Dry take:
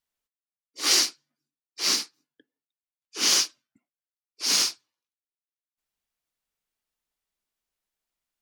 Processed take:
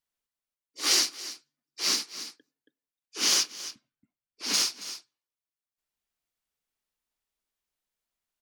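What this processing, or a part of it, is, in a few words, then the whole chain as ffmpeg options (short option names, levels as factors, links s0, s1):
ducked delay: -filter_complex "[0:a]asettb=1/sr,asplit=3[s0][s1][s2];[s0]atrim=end=3.434[s3];[s1]atrim=start=3.43:end=4.54,asetpts=PTS-STARTPTS,afade=t=in:d=0.004:c=qsin,afade=t=out:st=1.106:d=0.004:c=qsin,bass=f=250:g=9,treble=f=4000:g=-7[s4];[s2]atrim=start=4.536[s5];[s3][s4]acrossfade=d=0.004:c1=hsin:c2=qsin[s6];[s6][s5]acrossfade=d=0.004:c1=qsin:c2=hsin,asplit=3[s7][s8][s9];[s8]adelay=276,volume=0.531[s10];[s9]apad=whole_len=383455[s11];[s10][s11]sidechaincompress=threshold=0.0126:ratio=10:attack=9.8:release=300[s12];[s7][s12]amix=inputs=2:normalize=0,volume=0.75"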